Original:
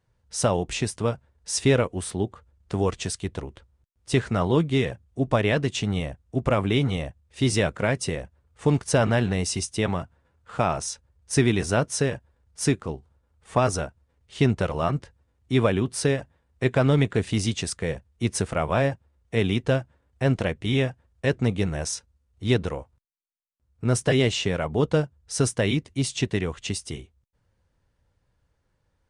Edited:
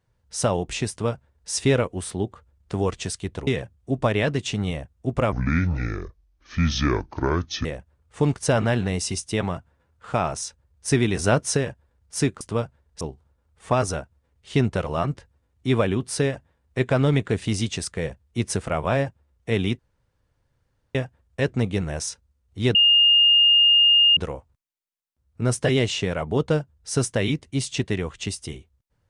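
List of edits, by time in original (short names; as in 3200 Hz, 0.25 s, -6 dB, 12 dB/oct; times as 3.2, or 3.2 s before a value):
0.9–1.5 copy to 12.86
3.47–4.76 cut
6.61–8.1 speed 64%
11.64–12.02 gain +3 dB
19.64–20.8 room tone
22.6 add tone 2830 Hz -12.5 dBFS 1.42 s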